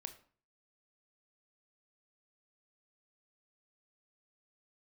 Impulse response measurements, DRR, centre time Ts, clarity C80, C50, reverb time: 8.0 dB, 7 ms, 16.5 dB, 13.0 dB, 0.45 s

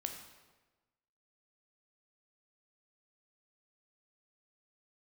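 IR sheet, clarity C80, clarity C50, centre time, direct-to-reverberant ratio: 8.0 dB, 6.0 dB, 30 ms, 4.0 dB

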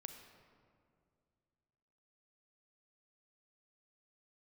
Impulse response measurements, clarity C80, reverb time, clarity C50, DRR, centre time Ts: 7.5 dB, 2.3 s, 6.5 dB, 6.0 dB, 35 ms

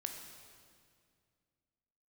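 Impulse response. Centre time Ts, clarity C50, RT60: 49 ms, 5.0 dB, 2.1 s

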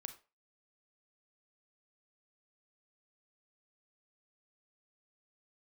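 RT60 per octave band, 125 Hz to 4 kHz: 0.25 s, 0.25 s, 0.30 s, 0.30 s, 0.30 s, 0.25 s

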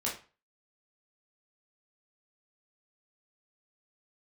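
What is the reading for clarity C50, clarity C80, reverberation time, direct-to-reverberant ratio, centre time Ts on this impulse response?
7.5 dB, 13.5 dB, 0.35 s, -5.5 dB, 29 ms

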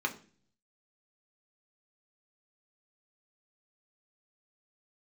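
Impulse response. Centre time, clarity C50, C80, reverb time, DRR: 9 ms, 14.5 dB, 19.0 dB, 0.40 s, 2.0 dB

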